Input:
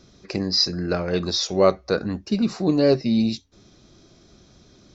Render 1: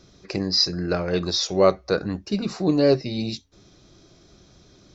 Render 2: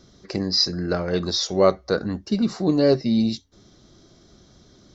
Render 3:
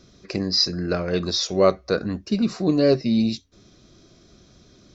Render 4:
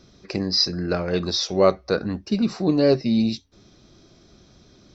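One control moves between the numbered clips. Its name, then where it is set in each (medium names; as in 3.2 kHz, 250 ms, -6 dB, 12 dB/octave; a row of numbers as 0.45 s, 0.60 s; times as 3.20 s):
band-stop, frequency: 230 Hz, 2.5 kHz, 850 Hz, 6.8 kHz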